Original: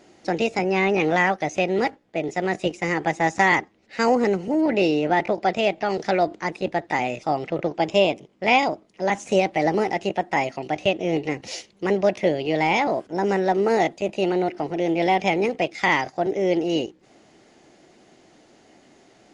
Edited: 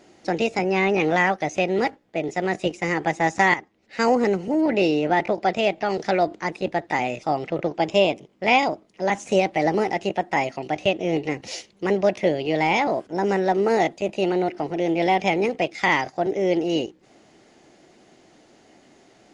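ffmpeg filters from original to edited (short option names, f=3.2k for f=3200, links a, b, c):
-filter_complex "[0:a]asplit=2[a][b];[a]atrim=end=3.54,asetpts=PTS-STARTPTS,afade=t=out:st=3.536:d=0.004:c=hsin:silence=0.251189[c];[b]atrim=start=3.54,asetpts=PTS-STARTPTS,afade=t=in:d=0.46:silence=0.251189[d];[c][d]concat=n=2:v=0:a=1"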